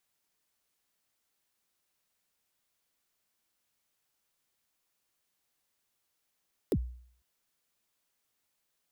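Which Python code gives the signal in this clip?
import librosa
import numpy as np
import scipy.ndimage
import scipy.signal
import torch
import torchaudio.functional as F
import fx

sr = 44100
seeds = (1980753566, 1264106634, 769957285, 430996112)

y = fx.drum_kick(sr, seeds[0], length_s=0.5, level_db=-22, start_hz=500.0, end_hz=61.0, sweep_ms=59.0, decay_s=0.58, click=True)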